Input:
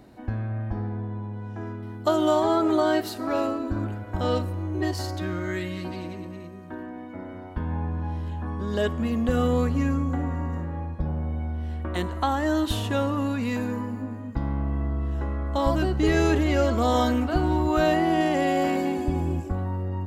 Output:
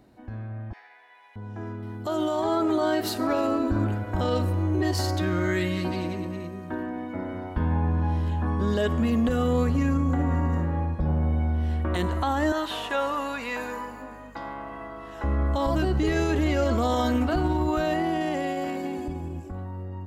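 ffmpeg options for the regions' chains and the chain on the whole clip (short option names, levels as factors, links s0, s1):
-filter_complex "[0:a]asettb=1/sr,asplit=3[s0][s1][s2];[s0]atrim=end=0.734[s3];[s1]atrim=start=0.73:end=1.36,asetpts=PTS-STARTPTS,afade=t=in:d=0.004:c=qsin,afade=t=out:st=0.626:d=0.004:c=qsin,highpass=f=810:w=0.5412,highpass=f=810:w=1.3066,highshelf=f=1600:t=q:w=3:g=7.5[s4];[s2]atrim=start=1.356[s5];[s3][s4]acrossfade=d=0.004:c1=hsin:c2=qsin[s6];[s6][s5]acrossfade=d=0.004:c1=qsin:c2=hsin,asettb=1/sr,asplit=3[s7][s8][s9];[s7]atrim=end=12.524[s10];[s8]atrim=start=12.52:end=15.24,asetpts=PTS-STARTPTS,afade=t=in:d=0.004:c=qsin,afade=t=out:st=2.716:d=0.004:c=qsin,highpass=650,aeval=exprs='val(0)+0.00178*(sin(2*PI*50*n/s)+sin(2*PI*2*50*n/s)/2+sin(2*PI*3*50*n/s)/3+sin(2*PI*4*50*n/s)/4+sin(2*PI*5*50*n/s)/5)':c=same,acrossover=split=3100[s11][s12];[s12]acompressor=threshold=0.00355:ratio=4:attack=1:release=60[s13];[s11][s13]amix=inputs=2:normalize=0[s14];[s9]atrim=start=15.236[s15];[s10][s14]acrossfade=d=0.004:c1=hsin:c2=qsin[s16];[s16][s15]acrossfade=d=0.004:c1=qsin:c2=hsin,alimiter=limit=0.0891:level=0:latency=1:release=50,dynaudnorm=f=190:g=21:m=3.55,volume=0.501"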